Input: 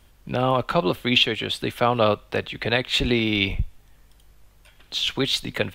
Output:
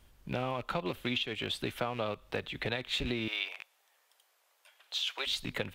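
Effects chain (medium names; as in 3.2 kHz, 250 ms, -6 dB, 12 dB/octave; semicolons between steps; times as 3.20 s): rattle on loud lows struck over -27 dBFS, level -21 dBFS; 3.28–5.27 s: high-pass 560 Hz 24 dB/octave; compression 10:1, threshold -23 dBFS, peak gain reduction 10.5 dB; trim -6.5 dB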